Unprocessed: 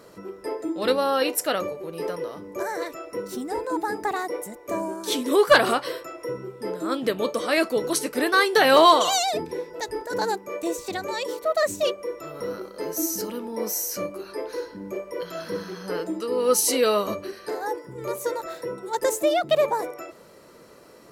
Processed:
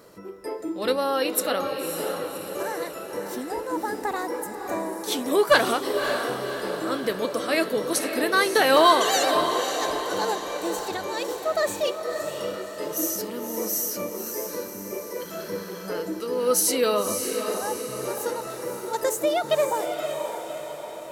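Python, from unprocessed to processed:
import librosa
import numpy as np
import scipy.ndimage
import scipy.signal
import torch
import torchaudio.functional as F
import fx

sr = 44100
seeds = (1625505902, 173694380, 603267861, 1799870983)

y = fx.high_shelf(x, sr, hz=12000.0, db=7.0)
y = fx.echo_diffused(y, sr, ms=561, feedback_pct=54, wet_db=-6.5)
y = F.gain(torch.from_numpy(y), -2.0).numpy()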